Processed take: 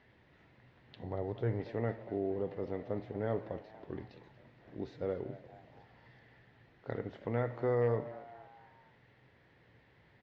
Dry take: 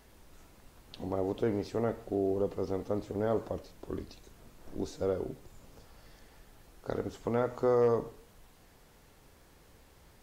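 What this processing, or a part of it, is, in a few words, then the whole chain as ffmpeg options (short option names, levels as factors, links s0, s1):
frequency-shifting delay pedal into a guitar cabinet: -filter_complex "[0:a]asplit=5[s0][s1][s2][s3][s4];[s1]adelay=235,afreqshift=110,volume=0.141[s5];[s2]adelay=470,afreqshift=220,volume=0.0724[s6];[s3]adelay=705,afreqshift=330,volume=0.0367[s7];[s4]adelay=940,afreqshift=440,volume=0.0188[s8];[s0][s5][s6][s7][s8]amix=inputs=5:normalize=0,highpass=90,equalizer=f=120:t=q:w=4:g=10,equalizer=f=1200:t=q:w=4:g=-4,equalizer=f=1900:t=q:w=4:g=10,lowpass=f=3700:w=0.5412,lowpass=f=3700:w=1.3066,asettb=1/sr,asplit=3[s9][s10][s11];[s9]atrim=end=1.004[s12];[s10]atrim=start=1:end=1.6,asetpts=PTS-STARTPTS,afade=t=in:d=0.004:c=qsin,afade=t=out:st=0.596:d=0.004:c=qsin,equalizer=f=100:t=o:w=0.67:g=6,equalizer=f=250:t=o:w=0.67:g=-6,equalizer=f=2500:t=o:w=0.67:g=-5[s13];[s11]atrim=start=1.596[s14];[s12][s13]acrossfade=d=0.004:c1=hsin:c2=qsin[s15];[s15][s14]acrossfade=d=0.004:c1=qsin:c2=hsin,volume=0.562"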